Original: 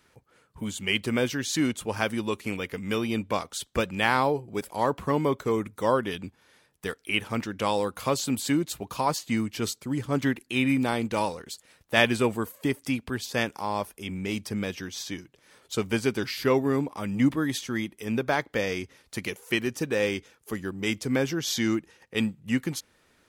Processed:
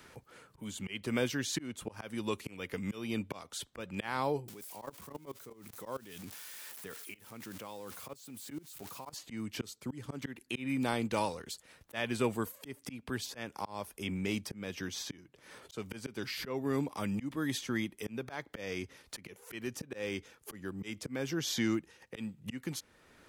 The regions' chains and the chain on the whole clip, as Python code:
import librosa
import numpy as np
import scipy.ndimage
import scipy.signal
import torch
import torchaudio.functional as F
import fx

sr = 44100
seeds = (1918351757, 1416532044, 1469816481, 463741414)

y = fx.chain(x, sr, fx.crossing_spikes(level_db=-26.0),
    fx.highpass(hz=94.0, slope=12),
    fx.level_steps(step_db=23), at=(4.48, 9.13))
y = fx.auto_swell(y, sr, attack_ms=356.0)
y = fx.band_squash(y, sr, depth_pct=40)
y = F.gain(torch.from_numpy(y), -3.0).numpy()